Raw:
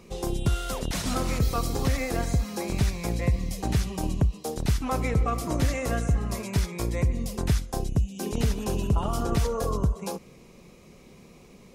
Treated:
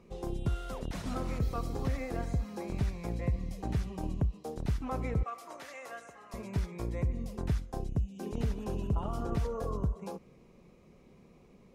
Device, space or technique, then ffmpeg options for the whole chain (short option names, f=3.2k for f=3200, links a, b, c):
through cloth: -filter_complex "[0:a]asettb=1/sr,asplit=3[a][b][c];[a]atrim=end=5.234[d];[b]atrim=start=5.23:end=6.34,asetpts=PTS-STARTPTS,afade=t=in:d=0.004:c=qsin,afade=t=out:st=1.106:d=0.004:c=qsin,highpass=830[e];[c]atrim=start=6.336[f];[d][e]acrossfade=d=0.004:c1=hsin:c2=qsin[g];[g][f]acrossfade=d=0.004:c1=qsin:c2=hsin,highshelf=f=2.8k:g=-12,volume=-7dB"